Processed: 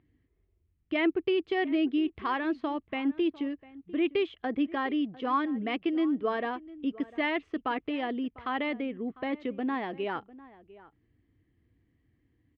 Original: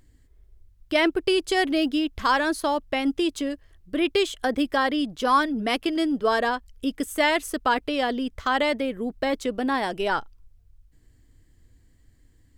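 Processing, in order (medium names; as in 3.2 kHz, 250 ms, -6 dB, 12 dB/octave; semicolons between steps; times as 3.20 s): cabinet simulation 100–2700 Hz, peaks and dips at 320 Hz +3 dB, 570 Hz -7 dB, 910 Hz -5 dB, 1.5 kHz -8 dB; echo from a far wall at 120 m, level -19 dB; trim -5 dB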